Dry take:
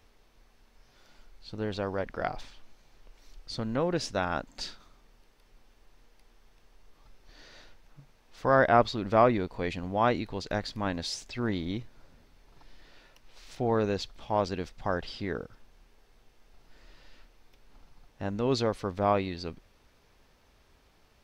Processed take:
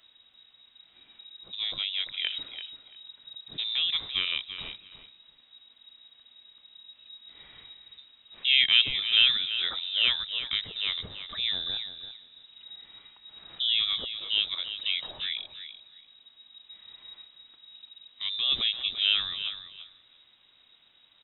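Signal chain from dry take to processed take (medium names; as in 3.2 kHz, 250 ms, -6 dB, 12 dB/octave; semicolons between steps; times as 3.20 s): frequency inversion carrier 3.8 kHz; feedback delay 339 ms, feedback 17%, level -11 dB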